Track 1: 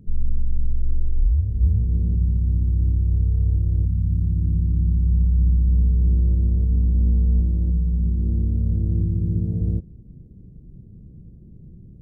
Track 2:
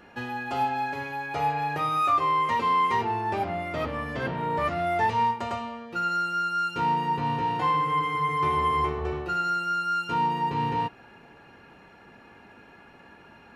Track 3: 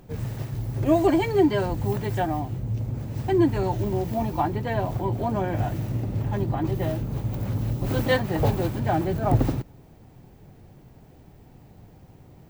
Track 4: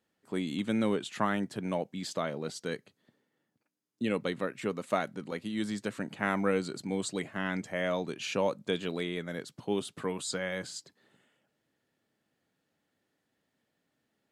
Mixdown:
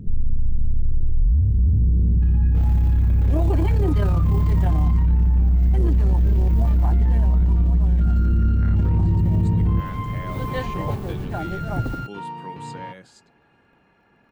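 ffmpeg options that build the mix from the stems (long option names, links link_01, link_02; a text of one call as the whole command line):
ffmpeg -i stem1.wav -i stem2.wav -i stem3.wav -i stem4.wav -filter_complex "[0:a]volume=2dB[link_01];[1:a]adelay=2050,volume=-15.5dB[link_02];[2:a]acrusher=bits=5:mix=0:aa=0.5,adelay=2450,volume=-4.5dB,afade=type=out:start_time=6.97:duration=0.56:silence=0.334965[link_03];[3:a]adelay=2400,volume=-15dB[link_04];[link_01][link_02][link_03][link_04]amix=inputs=4:normalize=0,bass=frequency=250:gain=3,treble=frequency=4000:gain=-4,acontrast=69,alimiter=limit=-13dB:level=0:latency=1:release=28" out.wav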